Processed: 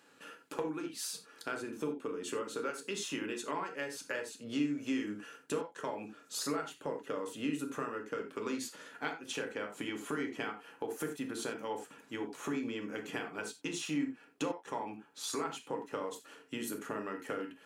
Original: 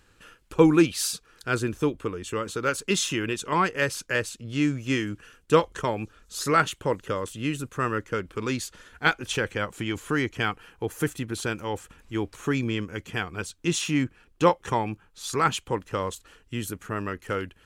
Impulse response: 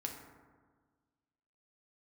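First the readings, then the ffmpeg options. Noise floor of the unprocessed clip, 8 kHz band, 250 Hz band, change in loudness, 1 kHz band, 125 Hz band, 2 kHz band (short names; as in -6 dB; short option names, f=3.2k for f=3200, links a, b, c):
-61 dBFS, -9.5 dB, -10.5 dB, -11.5 dB, -13.0 dB, -20.0 dB, -13.0 dB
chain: -filter_complex "[0:a]highpass=f=180:w=0.5412,highpass=f=180:w=1.3066,equalizer=f=660:w=1.2:g=4.5,acompressor=threshold=-33dB:ratio=12[a];[1:a]atrim=start_sample=2205,atrim=end_sample=4410[b];[a][b]afir=irnorm=-1:irlink=0"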